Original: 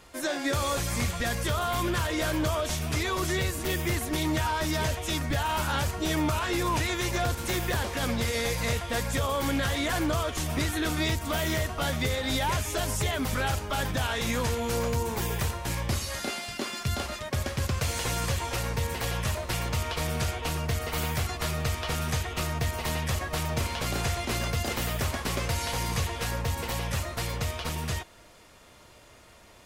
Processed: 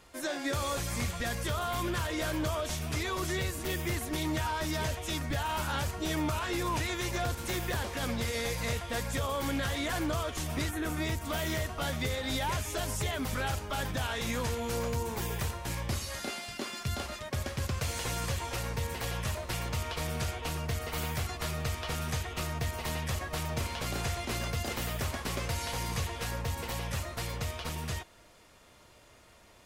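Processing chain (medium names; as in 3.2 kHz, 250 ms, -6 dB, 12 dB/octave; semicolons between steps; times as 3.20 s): 10.69–11.23 s: peaking EQ 4.1 kHz -12.5 dB -> -2.5 dB 1.1 oct; trim -4.5 dB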